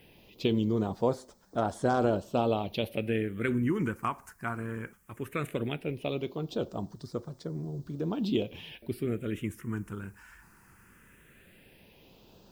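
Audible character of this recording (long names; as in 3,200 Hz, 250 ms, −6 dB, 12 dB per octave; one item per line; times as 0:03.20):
a quantiser's noise floor 12 bits, dither triangular
phaser sweep stages 4, 0.17 Hz, lowest notch 550–2,600 Hz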